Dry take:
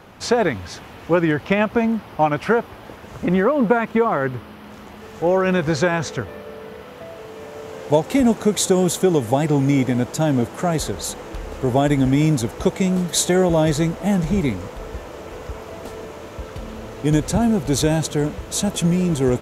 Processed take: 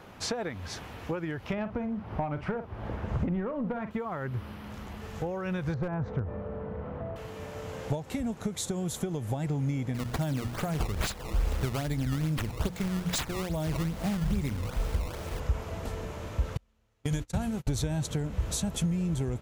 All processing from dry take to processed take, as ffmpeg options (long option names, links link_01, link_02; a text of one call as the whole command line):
ffmpeg -i in.wav -filter_complex "[0:a]asettb=1/sr,asplit=3[link_01][link_02][link_03];[link_01]atrim=end=1.534[link_04];[link_02]atrim=start=1.53:end=3.91,asetpts=PTS-STARTPTS,afade=type=in:duration=0.004:curve=qsin,afade=type=out:start_time=2.376:duration=0.004:curve=qsin,lowpass=frequency=1100:poles=1,asplit=2[link_05][link_06];[link_06]adelay=47,volume=-12dB[link_07];[link_05][link_07]amix=inputs=2:normalize=0,atrim=end_sample=104958,acontrast=87[link_08];[link_03]atrim=start=3.906[link_09];[link_04][link_08]acrossfade=duration=0.004:curve1=hsin:curve2=qsin[link_10];[link_10][link_09]acrossfade=duration=0.004:curve1=qsin:curve2=hsin,asettb=1/sr,asplit=3[link_11][link_12][link_13];[link_11]atrim=end=5.744[link_14];[link_12]atrim=start=5.74:end=7.16,asetpts=PTS-STARTPTS,afade=type=in:duration=0.004:curve=qsin,afade=type=out:start_time=1.416:duration=0.004:curve=qsin,lowpass=1000,acompressor=mode=upward:threshold=-25dB:ratio=2.5:attack=3.2:release=140:knee=2.83:detection=peak,volume=14dB,asoftclip=hard,volume=-14dB[link_15];[link_13]atrim=start=7.156[link_16];[link_14][link_15]acrossfade=duration=0.004:curve1=hsin:curve2=qsin[link_17];[link_17][link_16]acrossfade=duration=0.004:curve1=qsin:curve2=hsin,asettb=1/sr,asplit=3[link_18][link_19][link_20];[link_18]atrim=end=9.944[link_21];[link_19]atrim=start=9.94:end=15.4,asetpts=PTS-STARTPTS,afade=type=in:duration=0.004:curve=qsin,afade=type=out:start_time=5.456:duration=0.004:curve=qsin,aemphasis=mode=production:type=50kf,bandreject=frequency=60:width_type=h:width=6,bandreject=frequency=120:width_type=h:width=6,bandreject=frequency=180:width_type=h:width=6,bandreject=frequency=240:width_type=h:width=6,bandreject=frequency=300:width_type=h:width=6,acrusher=samples=16:mix=1:aa=0.000001:lfo=1:lforange=25.6:lforate=2.4[link_22];[link_20]atrim=start=15.396[link_23];[link_21][link_22]acrossfade=duration=0.004:curve1=hsin:curve2=qsin[link_24];[link_24][link_23]acrossfade=duration=0.004:curve1=qsin:curve2=hsin,asettb=1/sr,asplit=3[link_25][link_26][link_27];[link_25]atrim=end=16.574[link_28];[link_26]atrim=start=16.57:end=17.67,asetpts=PTS-STARTPTS,afade=type=in:duration=0.004:curve=qsin,afade=type=out:start_time=1.096:duration=0.004:curve=qsin,bandreject=frequency=60:width_type=h:width=6,bandreject=frequency=120:width_type=h:width=6,bandreject=frequency=180:width_type=h:width=6,bandreject=frequency=240:width_type=h:width=6,bandreject=frequency=300:width_type=h:width=6,bandreject=frequency=360:width_type=h:width=6,agate=range=-34dB:threshold=-23dB:ratio=16:release=100:detection=peak,tiltshelf=frequency=1300:gain=-4.5[link_29];[link_27]atrim=start=17.666[link_30];[link_28][link_29]acrossfade=duration=0.004:curve1=hsin:curve2=qsin[link_31];[link_31][link_30]acrossfade=duration=0.004:curve1=qsin:curve2=hsin,acompressor=threshold=-25dB:ratio=12,asubboost=boost=3.5:cutoff=160,volume=-4.5dB" out.wav